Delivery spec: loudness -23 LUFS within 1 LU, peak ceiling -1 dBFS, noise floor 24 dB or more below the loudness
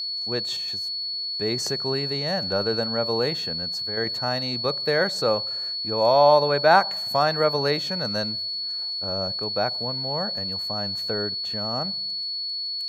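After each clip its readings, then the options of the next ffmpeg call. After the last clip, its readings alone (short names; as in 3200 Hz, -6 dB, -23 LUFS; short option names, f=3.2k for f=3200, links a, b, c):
steady tone 4400 Hz; tone level -27 dBFS; loudness -23.5 LUFS; peak -4.0 dBFS; loudness target -23.0 LUFS
-> -af "bandreject=f=4.4k:w=30"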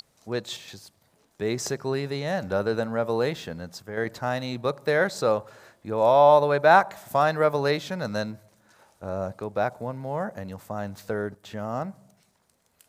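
steady tone none; loudness -25.5 LUFS; peak -4.0 dBFS; loudness target -23.0 LUFS
-> -af "volume=2.5dB"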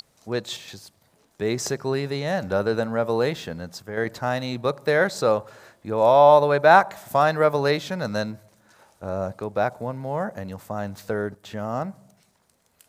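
loudness -23.0 LUFS; peak -1.5 dBFS; noise floor -65 dBFS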